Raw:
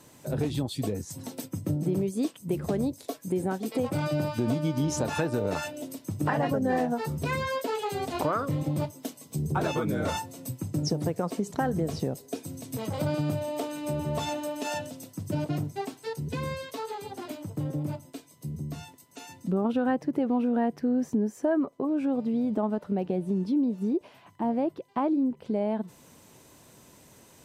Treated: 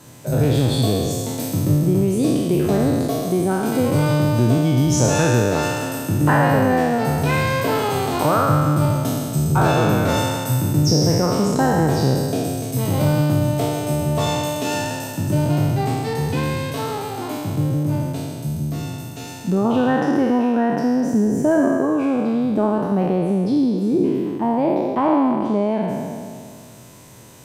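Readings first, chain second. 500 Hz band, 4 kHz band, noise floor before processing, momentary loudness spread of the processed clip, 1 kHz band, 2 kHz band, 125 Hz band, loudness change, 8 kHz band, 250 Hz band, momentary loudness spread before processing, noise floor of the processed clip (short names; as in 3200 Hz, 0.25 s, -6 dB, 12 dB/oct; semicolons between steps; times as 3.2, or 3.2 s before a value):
+10.0 dB, +12.5 dB, -55 dBFS, 8 LU, +11.0 dB, +11.5 dB, +13.5 dB, +10.5 dB, +13.0 dB, +9.5 dB, 11 LU, -35 dBFS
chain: spectral trails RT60 2.18 s; bell 120 Hz +8 dB 0.5 oct; gain +6 dB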